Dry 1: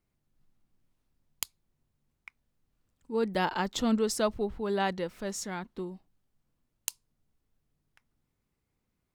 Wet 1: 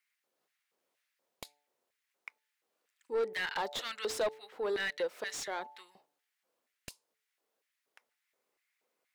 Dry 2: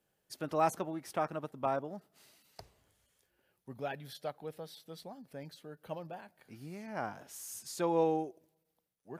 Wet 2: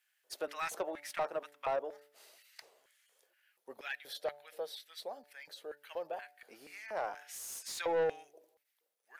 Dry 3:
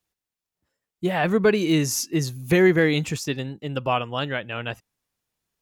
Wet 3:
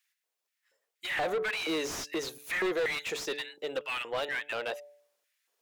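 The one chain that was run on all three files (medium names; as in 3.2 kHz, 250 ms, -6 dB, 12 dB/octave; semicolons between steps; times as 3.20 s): bass shelf 280 Hz -8 dB; LFO high-pass square 2.1 Hz 490–1900 Hz; de-hum 145.8 Hz, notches 6; in parallel at -0.5 dB: compression, threshold -35 dBFS; on the sum: saturation -23 dBFS; dynamic bell 3.8 kHz, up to +7 dB, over -55 dBFS, Q 6.6; slew-rate limiter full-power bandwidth 110 Hz; trim -3.5 dB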